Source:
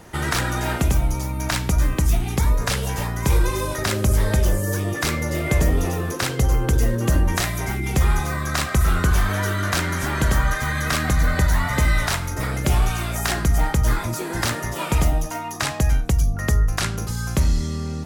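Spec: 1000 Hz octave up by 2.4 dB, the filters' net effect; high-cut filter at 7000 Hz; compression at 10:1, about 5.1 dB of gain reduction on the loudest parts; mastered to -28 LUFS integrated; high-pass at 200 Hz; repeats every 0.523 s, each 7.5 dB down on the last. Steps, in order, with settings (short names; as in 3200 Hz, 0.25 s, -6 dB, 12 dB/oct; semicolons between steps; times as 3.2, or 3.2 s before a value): HPF 200 Hz; LPF 7000 Hz; bell 1000 Hz +3 dB; compressor 10:1, threshold -25 dBFS; feedback echo 0.523 s, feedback 42%, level -7.5 dB; gain +0.5 dB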